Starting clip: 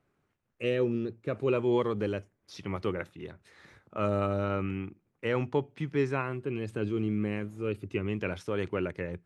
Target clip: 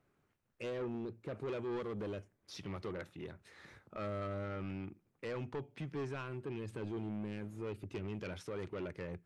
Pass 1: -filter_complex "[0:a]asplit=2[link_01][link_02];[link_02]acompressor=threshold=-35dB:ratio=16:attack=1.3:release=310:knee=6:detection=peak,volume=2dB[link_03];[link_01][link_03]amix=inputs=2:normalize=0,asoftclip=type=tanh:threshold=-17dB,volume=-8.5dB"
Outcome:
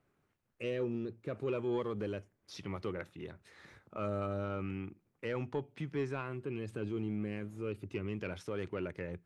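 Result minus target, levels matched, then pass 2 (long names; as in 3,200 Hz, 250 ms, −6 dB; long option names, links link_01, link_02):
soft clipping: distortion −12 dB
-filter_complex "[0:a]asplit=2[link_01][link_02];[link_02]acompressor=threshold=-35dB:ratio=16:attack=1.3:release=310:knee=6:detection=peak,volume=2dB[link_03];[link_01][link_03]amix=inputs=2:normalize=0,asoftclip=type=tanh:threshold=-27dB,volume=-8.5dB"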